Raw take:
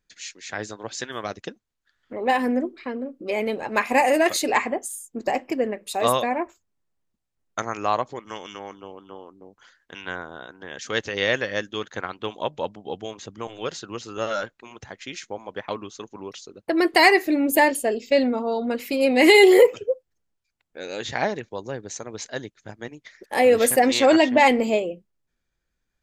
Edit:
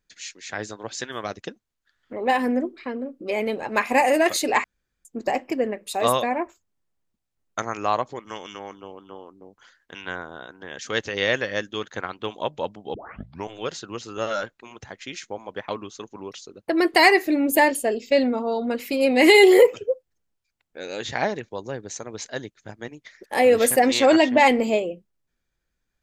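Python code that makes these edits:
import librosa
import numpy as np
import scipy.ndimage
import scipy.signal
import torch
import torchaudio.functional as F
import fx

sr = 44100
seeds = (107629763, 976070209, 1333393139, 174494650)

y = fx.edit(x, sr, fx.room_tone_fill(start_s=4.64, length_s=0.41),
    fx.tape_start(start_s=12.94, length_s=0.55), tone=tone)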